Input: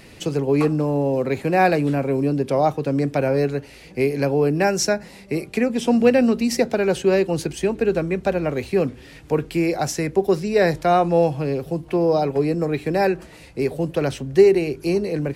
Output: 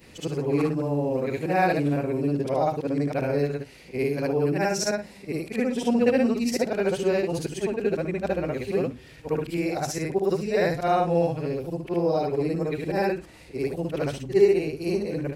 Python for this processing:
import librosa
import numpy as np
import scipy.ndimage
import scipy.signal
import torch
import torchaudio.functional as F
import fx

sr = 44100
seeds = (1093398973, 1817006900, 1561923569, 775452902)

y = fx.frame_reverse(x, sr, frame_ms=153.0)
y = y * librosa.db_to_amplitude(-2.0)